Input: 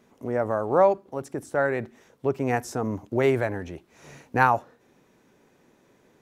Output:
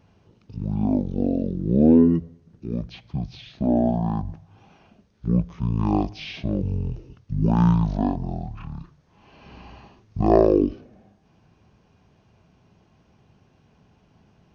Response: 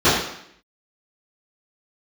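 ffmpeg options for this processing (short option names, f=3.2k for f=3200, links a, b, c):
-af "asetrate=18846,aresample=44100,volume=2.5dB"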